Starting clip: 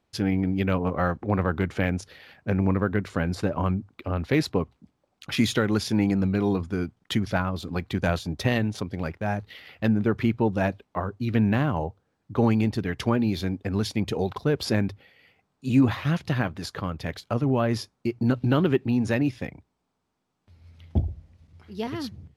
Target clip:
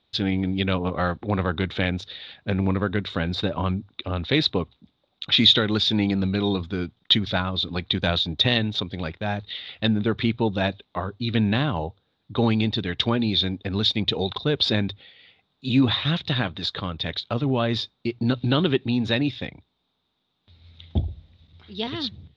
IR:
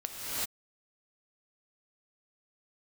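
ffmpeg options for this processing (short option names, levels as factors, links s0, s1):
-af "lowpass=f=3700:t=q:w=12"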